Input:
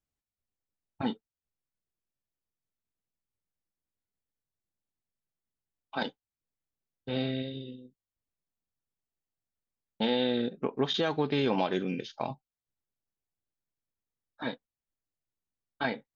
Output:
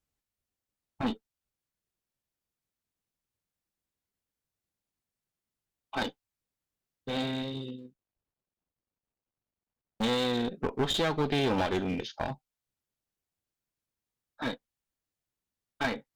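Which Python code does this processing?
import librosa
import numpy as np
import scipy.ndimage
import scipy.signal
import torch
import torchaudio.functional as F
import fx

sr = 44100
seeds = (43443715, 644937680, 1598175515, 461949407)

y = fx.median_filter(x, sr, points=25, at=(7.77, 10.02), fade=0.02)
y = fx.clip_asym(y, sr, top_db=-35.0, bottom_db=-20.0)
y = F.gain(torch.from_numpy(y), 3.5).numpy()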